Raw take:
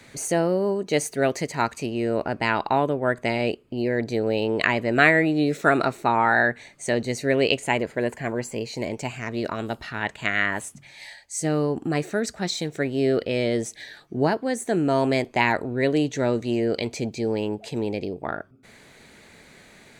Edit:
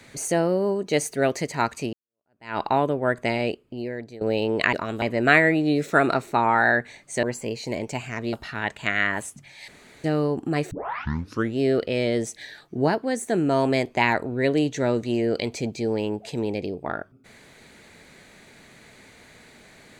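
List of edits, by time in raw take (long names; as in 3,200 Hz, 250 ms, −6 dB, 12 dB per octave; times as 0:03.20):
0:01.93–0:02.58: fade in exponential
0:03.33–0:04.21: fade out linear, to −18.5 dB
0:06.94–0:08.33: remove
0:09.43–0:09.72: move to 0:04.73
0:11.07–0:11.43: fill with room tone
0:12.10: tape start 0.88 s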